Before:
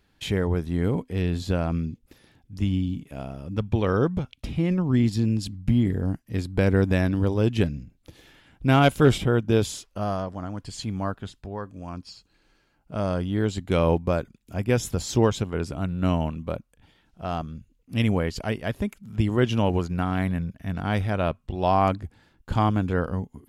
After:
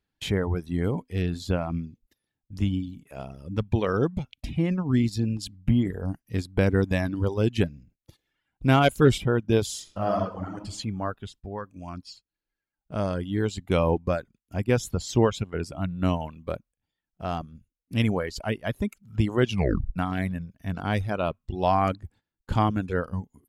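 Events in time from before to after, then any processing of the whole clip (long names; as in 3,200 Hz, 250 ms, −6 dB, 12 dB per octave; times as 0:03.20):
0:09.65–0:10.57: thrown reverb, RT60 0.92 s, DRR −0.5 dB
0:13.90–0:15.61: high-shelf EQ 6,400 Hz −5 dB
0:19.51: tape stop 0.45 s
whole clip: noise gate −47 dBFS, range −16 dB; reverb reduction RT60 1.1 s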